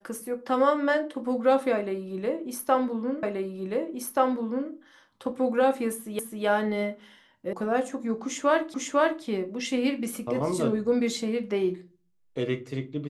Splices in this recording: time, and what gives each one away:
3.23 s: repeat of the last 1.48 s
6.19 s: repeat of the last 0.26 s
7.53 s: sound stops dead
8.74 s: repeat of the last 0.5 s

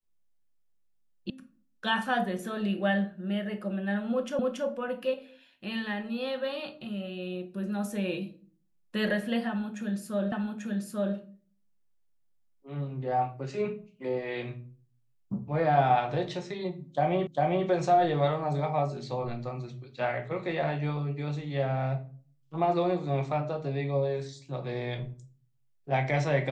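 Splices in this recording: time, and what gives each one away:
1.30 s: sound stops dead
4.39 s: repeat of the last 0.28 s
10.32 s: repeat of the last 0.84 s
17.27 s: repeat of the last 0.4 s

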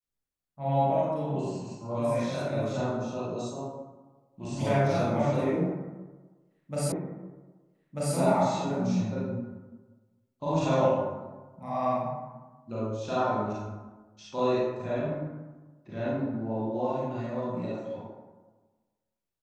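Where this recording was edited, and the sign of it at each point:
6.92 s: repeat of the last 1.24 s

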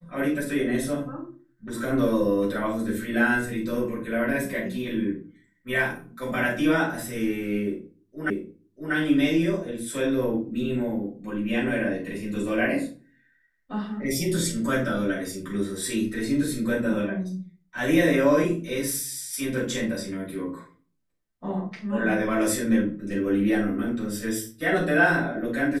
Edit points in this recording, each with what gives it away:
8.30 s: repeat of the last 0.64 s

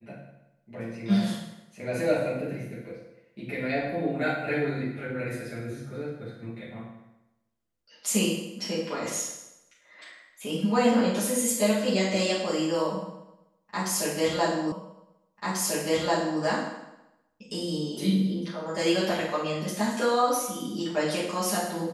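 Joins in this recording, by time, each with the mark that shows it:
14.72 s: repeat of the last 1.69 s

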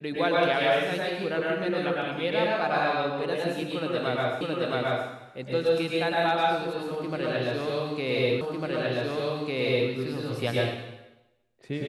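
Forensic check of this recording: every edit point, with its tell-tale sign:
4.41 s: repeat of the last 0.67 s
8.41 s: repeat of the last 1.5 s

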